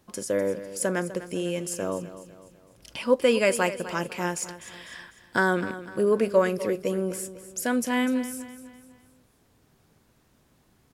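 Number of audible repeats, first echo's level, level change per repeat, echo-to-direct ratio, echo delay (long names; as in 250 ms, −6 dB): 3, −14.0 dB, −7.0 dB, −13.0 dB, 250 ms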